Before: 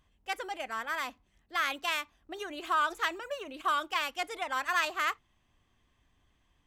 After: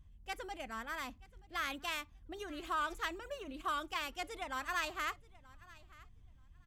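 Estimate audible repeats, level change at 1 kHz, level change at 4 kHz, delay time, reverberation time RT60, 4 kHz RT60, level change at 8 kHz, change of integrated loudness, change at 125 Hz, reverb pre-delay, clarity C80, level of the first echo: 1, -7.5 dB, -7.0 dB, 0.93 s, none, none, -5.0 dB, -7.5 dB, n/a, none, none, -22.0 dB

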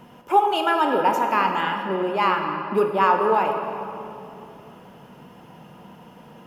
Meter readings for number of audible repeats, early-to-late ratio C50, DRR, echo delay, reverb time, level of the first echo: none, 4.5 dB, 3.0 dB, none, 2.9 s, none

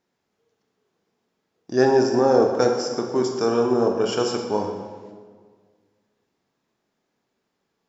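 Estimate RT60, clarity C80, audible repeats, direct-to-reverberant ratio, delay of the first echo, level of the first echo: 1.7 s, 6.0 dB, none, 2.0 dB, none, none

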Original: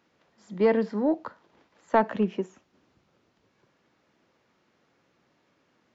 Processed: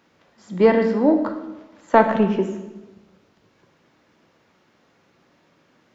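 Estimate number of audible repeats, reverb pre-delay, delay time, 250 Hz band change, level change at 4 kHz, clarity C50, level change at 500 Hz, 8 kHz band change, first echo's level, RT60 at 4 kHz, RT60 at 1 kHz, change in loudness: none, 10 ms, none, +8.0 dB, +8.0 dB, 8.5 dB, +7.5 dB, n/a, none, 0.90 s, 1.0 s, +7.5 dB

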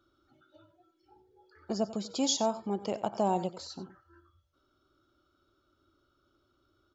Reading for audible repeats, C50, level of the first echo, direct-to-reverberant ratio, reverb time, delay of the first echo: 1, none, -15.0 dB, none, none, 92 ms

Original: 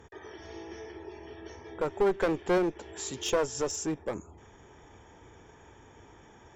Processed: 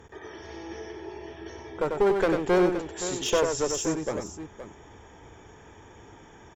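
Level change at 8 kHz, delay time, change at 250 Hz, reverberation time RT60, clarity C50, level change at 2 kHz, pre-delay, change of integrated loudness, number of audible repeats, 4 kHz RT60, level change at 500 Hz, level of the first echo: +4.5 dB, 94 ms, +5.0 dB, none, none, +4.5 dB, none, +5.0 dB, 2, none, +4.5 dB, -5.0 dB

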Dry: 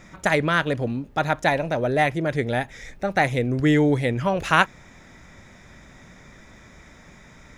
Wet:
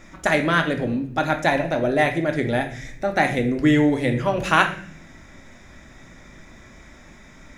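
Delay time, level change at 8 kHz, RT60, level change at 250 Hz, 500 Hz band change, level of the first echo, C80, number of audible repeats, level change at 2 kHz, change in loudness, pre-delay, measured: none, +1.5 dB, 0.50 s, +2.5 dB, +1.0 dB, none, 13.5 dB, none, +1.5 dB, +1.5 dB, 3 ms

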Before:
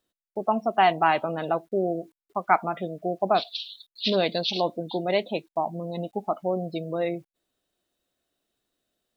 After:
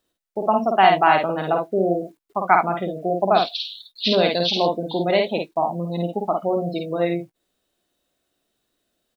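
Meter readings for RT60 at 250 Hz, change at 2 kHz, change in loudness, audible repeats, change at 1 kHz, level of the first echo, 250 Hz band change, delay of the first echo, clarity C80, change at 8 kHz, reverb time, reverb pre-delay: none, +5.5 dB, +5.5 dB, 1, +5.5 dB, -3.5 dB, +5.5 dB, 52 ms, none, n/a, none, none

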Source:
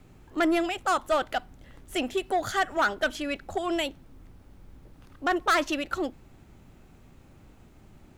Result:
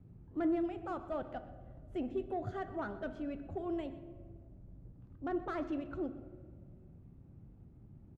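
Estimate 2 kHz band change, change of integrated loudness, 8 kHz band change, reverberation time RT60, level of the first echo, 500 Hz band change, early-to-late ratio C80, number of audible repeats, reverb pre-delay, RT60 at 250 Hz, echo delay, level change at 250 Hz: -21.0 dB, -11.5 dB, under -30 dB, 1.8 s, -17.5 dB, -10.0 dB, 12.5 dB, 1, 6 ms, 1.9 s, 0.124 s, -6.5 dB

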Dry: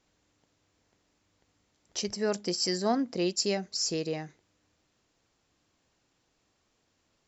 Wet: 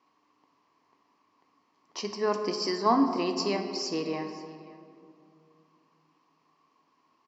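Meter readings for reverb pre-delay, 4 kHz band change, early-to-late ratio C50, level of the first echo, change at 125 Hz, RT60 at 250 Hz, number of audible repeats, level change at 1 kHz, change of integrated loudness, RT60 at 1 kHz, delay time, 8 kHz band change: 7 ms, -2.5 dB, 7.0 dB, -19.5 dB, -3.0 dB, 3.1 s, 1, +8.5 dB, +1.5 dB, 2.1 s, 0.532 s, n/a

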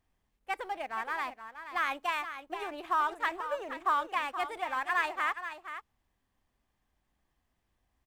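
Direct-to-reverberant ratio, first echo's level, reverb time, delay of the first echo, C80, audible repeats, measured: none, -10.5 dB, none, 0.475 s, none, 1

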